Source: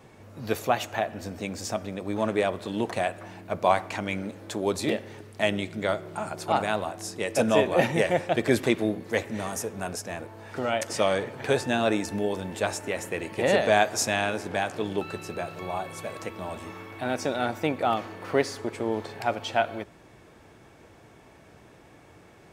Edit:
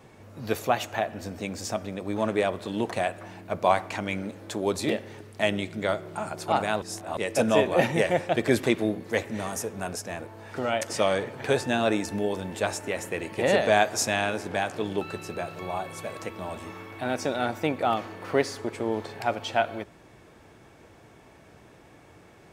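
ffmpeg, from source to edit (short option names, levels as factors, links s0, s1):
-filter_complex "[0:a]asplit=3[s0][s1][s2];[s0]atrim=end=6.822[s3];[s1]atrim=start=6.818:end=7.172,asetpts=PTS-STARTPTS,areverse[s4];[s2]atrim=start=7.168[s5];[s3][s4]acrossfade=d=0.004:c1=hsin:c2=hsin[s6];[s6][s5]acrossfade=d=0.004:c1=hsin:c2=hsin"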